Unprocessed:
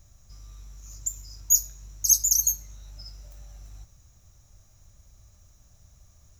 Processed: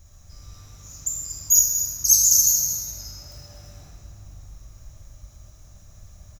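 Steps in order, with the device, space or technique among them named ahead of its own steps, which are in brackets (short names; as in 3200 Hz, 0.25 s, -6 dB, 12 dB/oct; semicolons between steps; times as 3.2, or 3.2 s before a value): cave (echo 0.235 s -10.5 dB; reverb RT60 3.4 s, pre-delay 8 ms, DRR -4.5 dB); gain +2 dB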